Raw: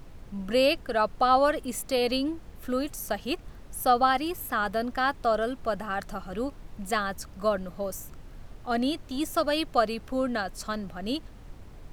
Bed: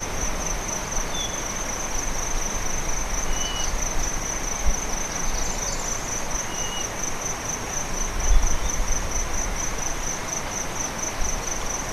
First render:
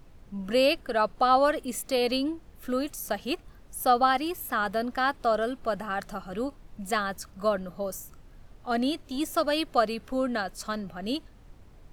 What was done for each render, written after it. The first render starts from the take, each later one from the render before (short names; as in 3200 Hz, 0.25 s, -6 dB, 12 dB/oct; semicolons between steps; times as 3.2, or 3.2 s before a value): noise print and reduce 6 dB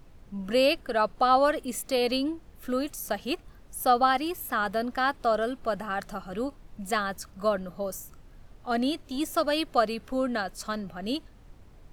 nothing audible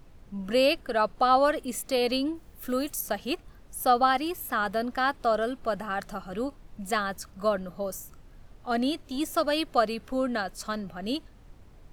2.35–3.01 high shelf 8300 Hz +10.5 dB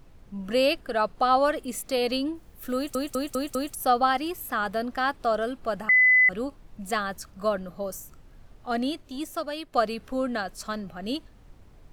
2.75 stutter in place 0.20 s, 5 plays; 5.89–6.29 bleep 2010 Hz -14.5 dBFS; 8.69–9.73 fade out, to -10 dB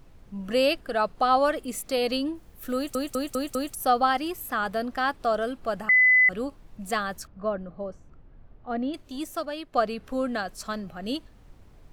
7.27–8.94 tape spacing loss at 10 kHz 38 dB; 9.45–10.07 high shelf 4800 Hz -7.5 dB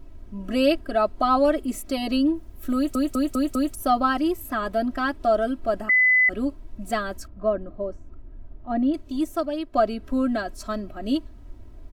tilt shelf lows +5 dB, about 650 Hz; comb 3.1 ms, depth 100%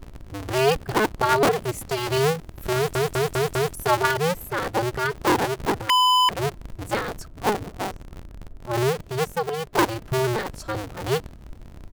cycle switcher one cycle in 2, inverted; short-mantissa float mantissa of 6-bit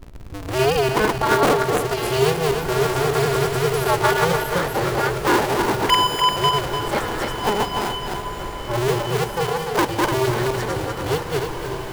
regenerating reverse delay 0.148 s, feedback 58%, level -1 dB; diffused feedback echo 1.627 s, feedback 50%, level -10 dB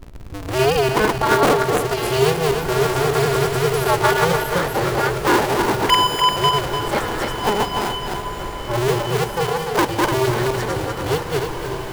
gain +1.5 dB